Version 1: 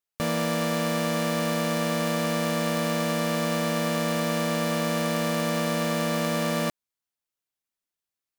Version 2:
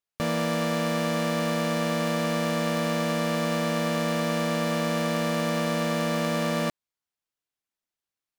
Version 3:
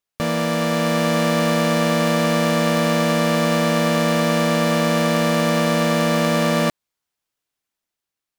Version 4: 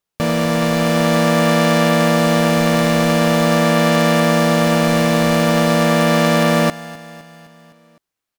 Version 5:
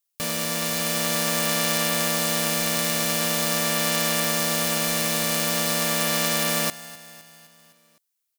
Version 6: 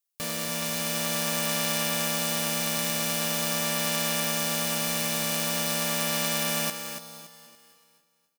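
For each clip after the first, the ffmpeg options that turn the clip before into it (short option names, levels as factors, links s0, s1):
-af "highshelf=f=8200:g=-7"
-af "dynaudnorm=f=180:g=9:m=1.41,volume=1.78"
-filter_complex "[0:a]asplit=2[s0][s1];[s1]acrusher=samples=15:mix=1:aa=0.000001:lfo=1:lforange=24:lforate=0.44,volume=0.355[s2];[s0][s2]amix=inputs=2:normalize=0,aecho=1:1:256|512|768|1024|1280:0.133|0.0773|0.0449|0.026|0.0151,volume=1.26"
-af "crystalizer=i=8.5:c=0,volume=0.168"
-af "aecho=1:1:284|568|852|1136:0.376|0.124|0.0409|0.0135,volume=0.596"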